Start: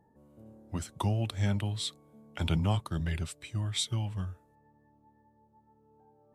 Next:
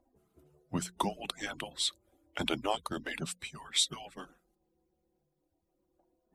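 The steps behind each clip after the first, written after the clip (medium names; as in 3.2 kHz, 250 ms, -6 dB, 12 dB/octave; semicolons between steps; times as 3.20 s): harmonic-percussive separation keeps percussive; hum notches 60/120/180 Hz; trim +4 dB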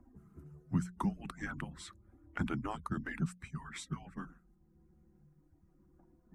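FFT filter 190 Hz 0 dB, 580 Hz -23 dB, 1.3 kHz -8 dB, 1.8 kHz -11 dB, 3.5 kHz -30 dB, 6.2 kHz -20 dB, 12 kHz -24 dB; three bands compressed up and down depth 40%; trim +7.5 dB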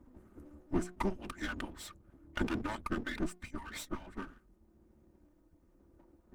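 comb filter that takes the minimum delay 3.3 ms; trim +3.5 dB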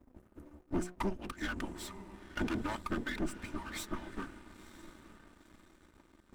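echo that smears into a reverb 959 ms, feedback 50%, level -14.5 dB; waveshaping leveller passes 2; trim -6 dB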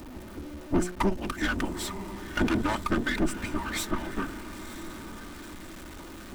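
jump at every zero crossing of -47 dBFS; trim +8.5 dB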